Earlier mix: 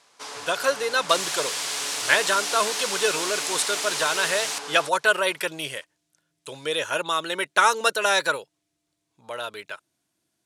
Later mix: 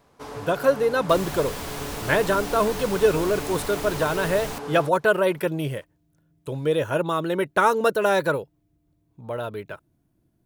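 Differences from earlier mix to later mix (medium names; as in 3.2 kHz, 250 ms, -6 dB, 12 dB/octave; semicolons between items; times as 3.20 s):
second sound: remove high-pass 190 Hz 12 dB/octave; master: remove frequency weighting ITU-R 468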